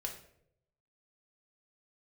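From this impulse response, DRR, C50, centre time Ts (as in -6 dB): 1.0 dB, 8.0 dB, 20 ms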